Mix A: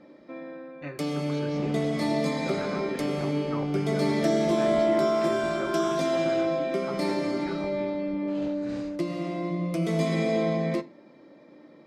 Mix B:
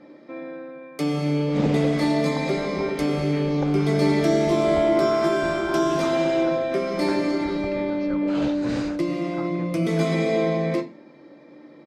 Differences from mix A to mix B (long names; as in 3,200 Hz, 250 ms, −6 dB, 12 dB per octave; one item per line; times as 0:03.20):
speech: entry +2.50 s
first sound: send +10.5 dB
second sound +11.5 dB